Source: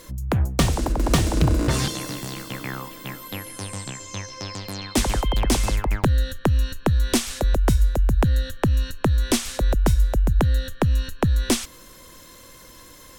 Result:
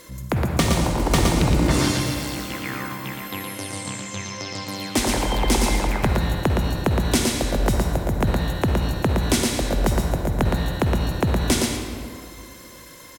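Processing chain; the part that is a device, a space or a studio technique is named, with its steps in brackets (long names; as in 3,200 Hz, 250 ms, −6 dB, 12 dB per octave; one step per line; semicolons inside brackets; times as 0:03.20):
PA in a hall (high-pass filter 100 Hz 6 dB per octave; parametric band 2,100 Hz +4 dB 0.23 octaves; single-tap delay 116 ms −4 dB; convolution reverb RT60 2.3 s, pre-delay 45 ms, DRR 3.5 dB)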